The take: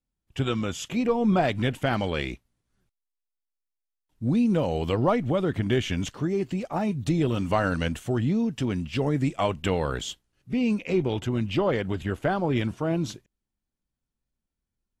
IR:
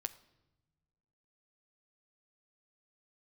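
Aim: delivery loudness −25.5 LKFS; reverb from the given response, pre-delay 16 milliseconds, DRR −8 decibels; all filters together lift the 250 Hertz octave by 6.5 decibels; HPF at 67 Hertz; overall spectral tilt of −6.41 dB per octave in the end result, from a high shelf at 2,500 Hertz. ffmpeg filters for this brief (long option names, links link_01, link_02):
-filter_complex "[0:a]highpass=67,equalizer=frequency=250:width_type=o:gain=8,highshelf=frequency=2500:gain=4.5,asplit=2[link_01][link_02];[1:a]atrim=start_sample=2205,adelay=16[link_03];[link_02][link_03]afir=irnorm=-1:irlink=0,volume=9.5dB[link_04];[link_01][link_04]amix=inputs=2:normalize=0,volume=-12.5dB"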